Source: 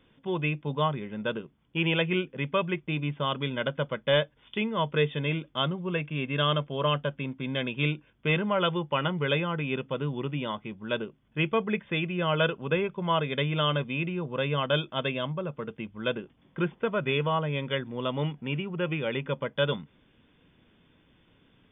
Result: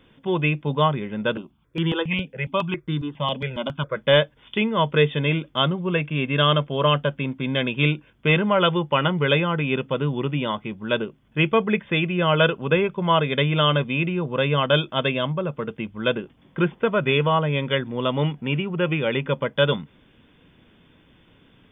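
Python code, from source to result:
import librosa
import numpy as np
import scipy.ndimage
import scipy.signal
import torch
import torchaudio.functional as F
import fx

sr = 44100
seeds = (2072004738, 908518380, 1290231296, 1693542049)

y = fx.phaser_held(x, sr, hz=7.3, low_hz=350.0, high_hz=2500.0, at=(1.35, 3.95), fade=0.02)
y = y * 10.0 ** (7.0 / 20.0)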